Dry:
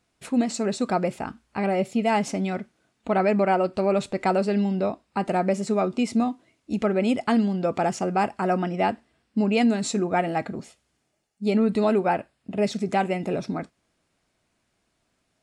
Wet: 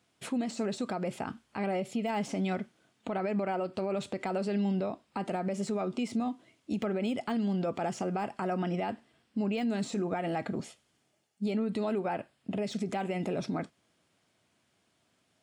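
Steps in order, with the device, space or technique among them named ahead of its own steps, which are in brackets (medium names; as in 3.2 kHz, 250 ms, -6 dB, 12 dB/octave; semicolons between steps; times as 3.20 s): broadcast voice chain (high-pass 84 Hz 24 dB/octave; de-esser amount 85%; compression 3:1, threshold -27 dBFS, peak gain reduction 8 dB; peaking EQ 3.2 kHz +5.5 dB 0.22 oct; peak limiter -24 dBFS, peak gain reduction 7 dB)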